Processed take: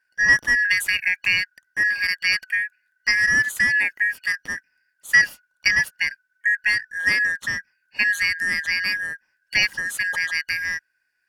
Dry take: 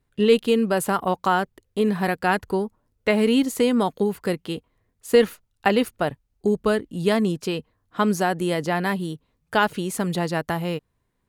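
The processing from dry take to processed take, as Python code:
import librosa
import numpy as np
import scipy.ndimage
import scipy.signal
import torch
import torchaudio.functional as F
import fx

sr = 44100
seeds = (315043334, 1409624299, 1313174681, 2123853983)

y = fx.band_shuffle(x, sr, order='3142')
y = fx.band_squash(y, sr, depth_pct=100, at=(0.65, 1.16))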